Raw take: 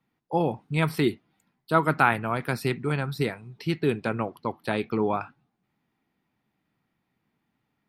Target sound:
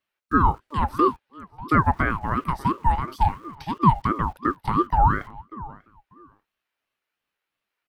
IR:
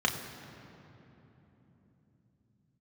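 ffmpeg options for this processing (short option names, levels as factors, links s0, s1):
-filter_complex "[0:a]acrossover=split=1000[s0][s1];[s0]aeval=exprs='val(0)*gte(abs(val(0)),0.00376)':c=same[s2];[s1]acompressor=threshold=0.01:ratio=6[s3];[s2][s3]amix=inputs=2:normalize=0,highpass=f=450:t=q:w=5.4,asplit=2[s4][s5];[s5]adelay=592,lowpass=f=2000:p=1,volume=0.119,asplit=2[s6][s7];[s7]adelay=592,lowpass=f=2000:p=1,volume=0.19[s8];[s4][s6][s8]amix=inputs=3:normalize=0,aeval=exprs='val(0)*sin(2*PI*580*n/s+580*0.35/2.9*sin(2*PI*2.9*n/s))':c=same,volume=1.26"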